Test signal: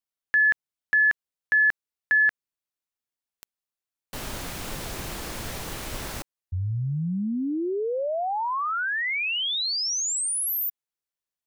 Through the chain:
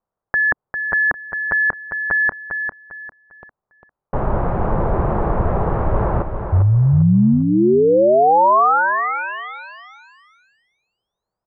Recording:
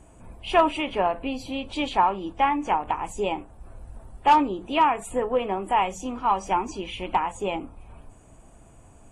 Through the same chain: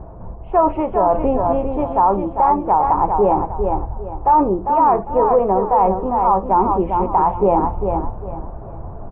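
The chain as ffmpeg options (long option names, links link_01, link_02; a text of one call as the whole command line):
ffmpeg -i in.wav -af "lowpass=frequency=1100:width=0.5412,lowpass=frequency=1100:width=1.3066,equalizer=frequency=270:width=3.9:gain=-10.5,areverse,acompressor=threshold=-32dB:ratio=5:attack=100:release=573:knee=6:detection=rms,areverse,aecho=1:1:400|800|1200|1600:0.447|0.13|0.0376|0.0109,alimiter=level_in=24.5dB:limit=-1dB:release=50:level=0:latency=1,volume=-5dB" out.wav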